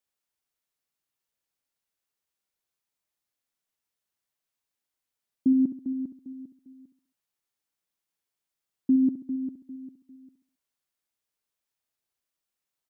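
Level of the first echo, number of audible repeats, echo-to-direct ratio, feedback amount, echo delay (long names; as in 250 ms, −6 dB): −12.0 dB, 4, −11.0 dB, 43%, 67 ms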